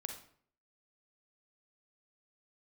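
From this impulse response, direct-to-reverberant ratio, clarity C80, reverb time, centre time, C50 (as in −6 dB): 4.0 dB, 11.0 dB, 0.55 s, 21 ms, 5.5 dB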